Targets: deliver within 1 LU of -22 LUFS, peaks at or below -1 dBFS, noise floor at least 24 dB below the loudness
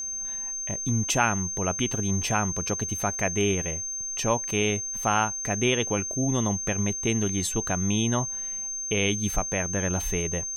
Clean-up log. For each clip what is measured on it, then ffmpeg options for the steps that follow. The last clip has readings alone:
steady tone 6.3 kHz; tone level -30 dBFS; loudness -26.0 LUFS; peak level -7.5 dBFS; loudness target -22.0 LUFS
-> -af "bandreject=f=6300:w=30"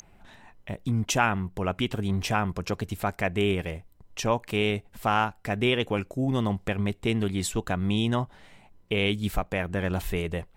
steady tone not found; loudness -28.0 LUFS; peak level -8.0 dBFS; loudness target -22.0 LUFS
-> -af "volume=2"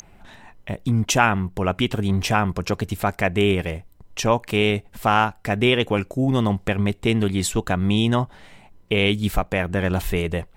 loudness -22.0 LUFS; peak level -2.0 dBFS; noise floor -51 dBFS

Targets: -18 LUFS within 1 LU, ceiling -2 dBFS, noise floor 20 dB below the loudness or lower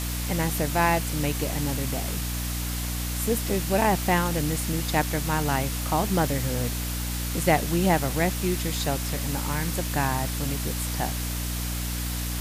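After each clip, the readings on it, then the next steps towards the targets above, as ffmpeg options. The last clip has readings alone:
hum 60 Hz; highest harmonic 300 Hz; hum level -28 dBFS; noise floor -30 dBFS; noise floor target -46 dBFS; loudness -26.0 LUFS; peak level -8.0 dBFS; loudness target -18.0 LUFS
-> -af "bandreject=f=60:t=h:w=6,bandreject=f=120:t=h:w=6,bandreject=f=180:t=h:w=6,bandreject=f=240:t=h:w=6,bandreject=f=300:t=h:w=6"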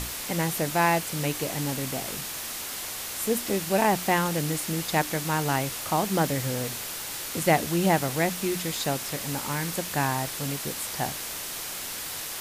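hum not found; noise floor -35 dBFS; noise floor target -47 dBFS
-> -af "afftdn=nr=12:nf=-35"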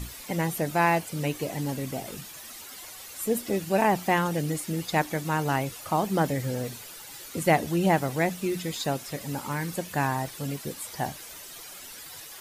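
noise floor -44 dBFS; noise floor target -48 dBFS
-> -af "afftdn=nr=6:nf=-44"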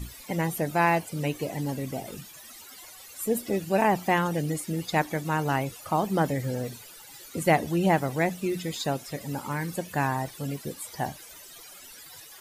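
noise floor -47 dBFS; noise floor target -48 dBFS
-> -af "afftdn=nr=6:nf=-47"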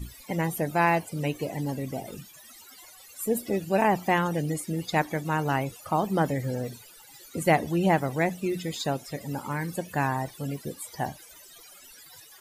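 noise floor -51 dBFS; loudness -28.0 LUFS; peak level -8.0 dBFS; loudness target -18.0 LUFS
-> -af "volume=3.16,alimiter=limit=0.794:level=0:latency=1"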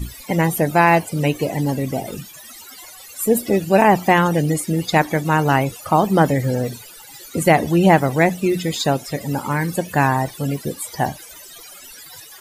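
loudness -18.5 LUFS; peak level -2.0 dBFS; noise floor -41 dBFS

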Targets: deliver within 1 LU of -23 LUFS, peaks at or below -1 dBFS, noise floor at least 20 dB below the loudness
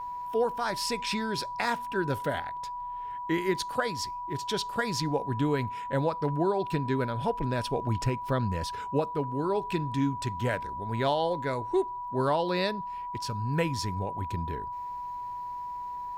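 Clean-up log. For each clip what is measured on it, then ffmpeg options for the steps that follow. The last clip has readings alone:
steady tone 980 Hz; tone level -34 dBFS; loudness -30.5 LUFS; peak level -14.0 dBFS; loudness target -23.0 LUFS
-> -af "bandreject=f=980:w=30"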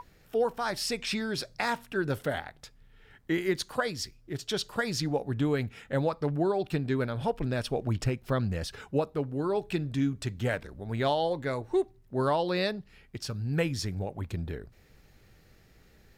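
steady tone not found; loudness -31.0 LUFS; peak level -13.5 dBFS; loudness target -23.0 LUFS
-> -af "volume=2.51"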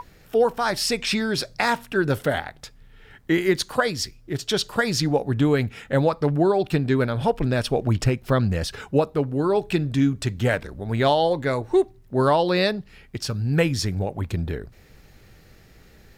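loudness -23.0 LUFS; peak level -5.5 dBFS; noise floor -52 dBFS

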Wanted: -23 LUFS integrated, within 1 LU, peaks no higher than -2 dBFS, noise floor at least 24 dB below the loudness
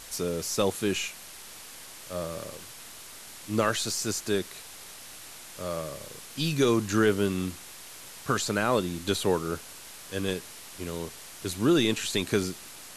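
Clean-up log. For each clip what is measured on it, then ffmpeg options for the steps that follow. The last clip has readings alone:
noise floor -46 dBFS; noise floor target -53 dBFS; loudness -29.0 LUFS; peak level -11.0 dBFS; loudness target -23.0 LUFS
-> -af "afftdn=nr=7:nf=-46"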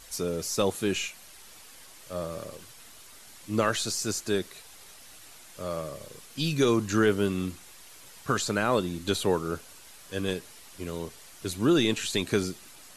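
noise floor -50 dBFS; noise floor target -53 dBFS
-> -af "afftdn=nr=6:nf=-50"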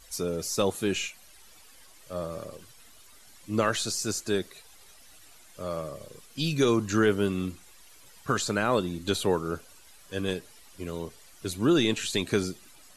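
noise floor -53 dBFS; loudness -28.5 LUFS; peak level -11.0 dBFS; loudness target -23.0 LUFS
-> -af "volume=1.88"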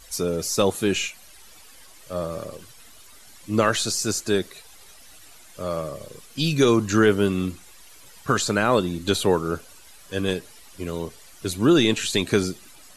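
loudness -23.0 LUFS; peak level -5.5 dBFS; noise floor -48 dBFS

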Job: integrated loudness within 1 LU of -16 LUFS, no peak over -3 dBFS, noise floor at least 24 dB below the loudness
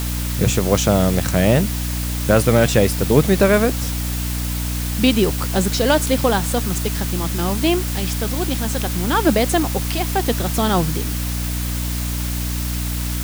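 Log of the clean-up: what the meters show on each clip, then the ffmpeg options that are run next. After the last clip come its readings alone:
hum 60 Hz; highest harmonic 300 Hz; hum level -21 dBFS; noise floor -23 dBFS; noise floor target -43 dBFS; loudness -19.0 LUFS; peak level -1.5 dBFS; loudness target -16.0 LUFS
-> -af "bandreject=f=60:t=h:w=6,bandreject=f=120:t=h:w=6,bandreject=f=180:t=h:w=6,bandreject=f=240:t=h:w=6,bandreject=f=300:t=h:w=6"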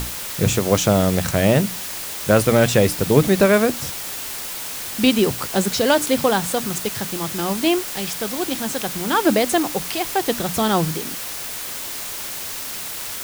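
hum not found; noise floor -30 dBFS; noise floor target -44 dBFS
-> -af "afftdn=nr=14:nf=-30"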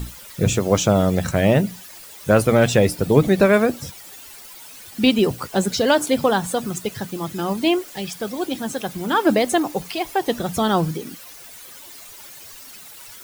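noise floor -41 dBFS; noise floor target -44 dBFS
-> -af "afftdn=nr=6:nf=-41"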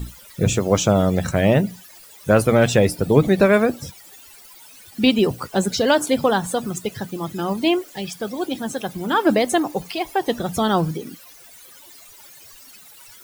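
noise floor -45 dBFS; loudness -20.0 LUFS; peak level -2.5 dBFS; loudness target -16.0 LUFS
-> -af "volume=1.58,alimiter=limit=0.708:level=0:latency=1"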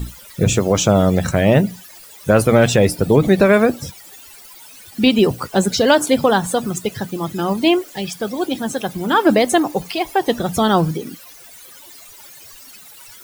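loudness -16.5 LUFS; peak level -3.0 dBFS; noise floor -41 dBFS

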